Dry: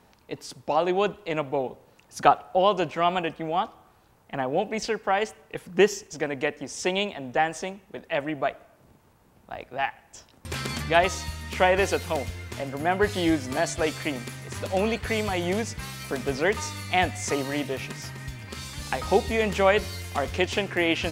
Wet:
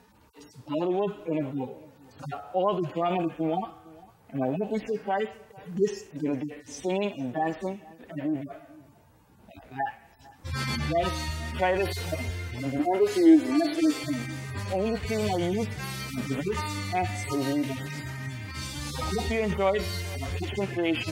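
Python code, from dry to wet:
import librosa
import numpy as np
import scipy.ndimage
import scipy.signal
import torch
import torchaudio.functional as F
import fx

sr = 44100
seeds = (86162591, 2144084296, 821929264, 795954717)

p1 = fx.hpss_only(x, sr, part='harmonic')
p2 = fx.peak_eq(p1, sr, hz=300.0, db=7.5, octaves=0.25)
p3 = fx.over_compress(p2, sr, threshold_db=-29.0, ratio=-0.5)
p4 = p2 + (p3 * librosa.db_to_amplitude(-0.5))
p5 = fx.dmg_crackle(p4, sr, seeds[0], per_s=20.0, level_db=-54.0)
p6 = fx.low_shelf_res(p5, sr, hz=220.0, db=-12.0, q=3.0, at=(12.79, 14.04))
p7 = p6 + fx.echo_single(p6, sr, ms=454, db=-22.5, dry=0)
y = p7 * librosa.db_to_amplitude(-4.5)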